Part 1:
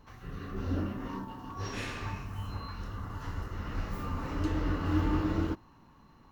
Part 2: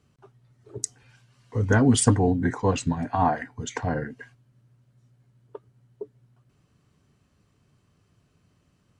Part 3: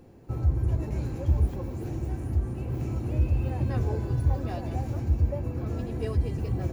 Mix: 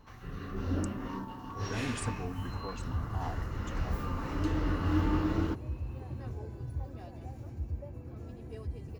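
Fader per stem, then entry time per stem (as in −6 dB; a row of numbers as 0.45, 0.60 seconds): 0.0, −18.5, −13.0 decibels; 0.00, 0.00, 2.50 seconds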